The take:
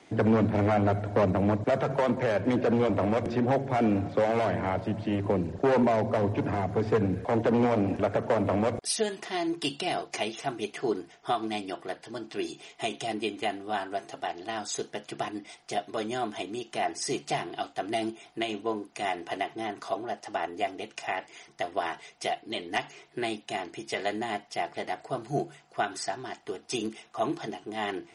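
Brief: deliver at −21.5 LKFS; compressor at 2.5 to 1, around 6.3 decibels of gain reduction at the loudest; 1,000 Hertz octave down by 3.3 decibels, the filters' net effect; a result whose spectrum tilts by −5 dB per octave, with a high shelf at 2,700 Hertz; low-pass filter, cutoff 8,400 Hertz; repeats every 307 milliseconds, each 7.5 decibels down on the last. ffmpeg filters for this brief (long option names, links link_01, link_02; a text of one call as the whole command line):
ffmpeg -i in.wav -af "lowpass=8400,equalizer=frequency=1000:width_type=o:gain=-4.5,highshelf=frequency=2700:gain=-5,acompressor=threshold=-30dB:ratio=2.5,aecho=1:1:307|614|921|1228|1535:0.422|0.177|0.0744|0.0312|0.0131,volume=12.5dB" out.wav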